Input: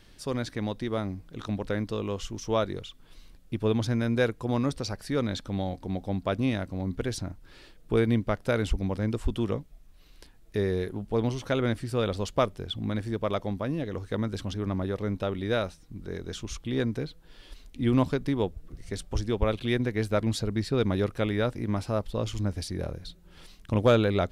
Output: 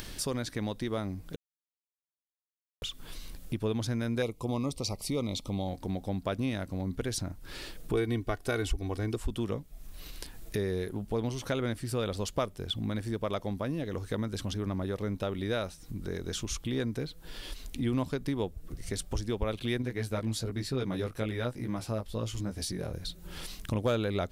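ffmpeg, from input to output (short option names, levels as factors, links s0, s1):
-filter_complex "[0:a]asettb=1/sr,asplit=3[s0][s1][s2];[s0]atrim=end=4.224[s3];[s1]atrim=start=4.22:end=5.68,asetpts=PTS-STARTPTS,afade=t=in:d=0.004:c=qsin,afade=t=out:st=1.456:d=0.004:c=qsin,asuperstop=centerf=1600:order=8:qfactor=2[s4];[s2]atrim=start=5.676[s5];[s3][s4]acrossfade=d=0.004:c1=hsin:c2=qsin[s6];[s6][s5]acrossfade=d=0.004:c1=qsin:c2=hsin,asettb=1/sr,asplit=3[s7][s8][s9];[s7]atrim=end=7.934[s10];[s8]atrim=start=7.93:end=9.16,asetpts=PTS-STARTPTS,afade=t=in:d=0.004:c=qsin,afade=t=out:st=1.226:d=0.004:c=qsin,aecho=1:1:2.7:0.65,atrim=end_sample=54243[s11];[s9]atrim=start=9.156[s12];[s10][s11]acrossfade=d=0.004:c1=hsin:c2=qsin[s13];[s13][s12]acrossfade=d=0.004:c1=qsin:c2=hsin,asettb=1/sr,asplit=3[s14][s15][s16];[s14]atrim=end=19.824[s17];[s15]atrim=start=19.82:end=22.93,asetpts=PTS-STARTPTS,afade=t=in:d=0.004:c=qsin,afade=t=out:st=3.106:d=0.004:c=qsin,flanger=delay=15.5:depth=3.1:speed=1.1[s18];[s16]atrim=start=22.926[s19];[s17][s18]acrossfade=d=0.004:c1=hsin:c2=qsin[s20];[s20][s19]acrossfade=d=0.004:c1=qsin:c2=hsin,asplit=3[s21][s22][s23];[s21]atrim=end=1.36,asetpts=PTS-STARTPTS,afade=t=out:st=1.356:d=0.004:c=hsin[s24];[s22]atrim=start=1.36:end=2.82,asetpts=PTS-STARTPTS,volume=0[s25];[s23]atrim=start=2.82,asetpts=PTS-STARTPTS,afade=t=in:d=0.004:c=hsin[s26];[s24][s25][s26]concat=n=3:v=0:a=1,acompressor=threshold=0.00447:ratio=2,highshelf=f=7000:g=10.5,acompressor=mode=upward:threshold=0.00562:ratio=2.5,volume=2.51"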